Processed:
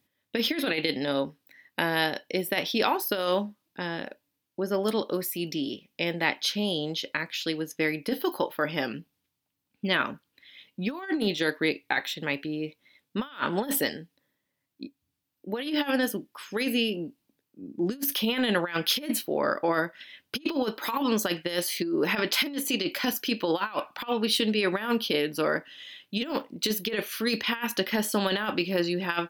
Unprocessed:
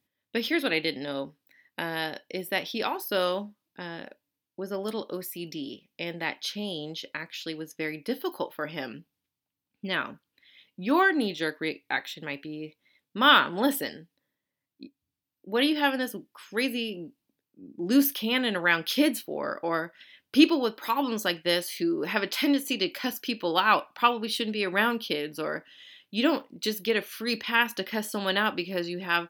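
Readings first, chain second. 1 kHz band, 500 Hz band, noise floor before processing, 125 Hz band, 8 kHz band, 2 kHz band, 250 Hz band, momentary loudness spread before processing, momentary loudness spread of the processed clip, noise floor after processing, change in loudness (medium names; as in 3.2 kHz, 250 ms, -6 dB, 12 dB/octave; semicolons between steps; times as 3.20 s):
-3.0 dB, +1.5 dB, under -85 dBFS, +4.5 dB, +4.5 dB, -2.0 dB, -0.5 dB, 14 LU, 10 LU, -81 dBFS, -0.5 dB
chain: compressor with a negative ratio -28 dBFS, ratio -0.5; trim +2.5 dB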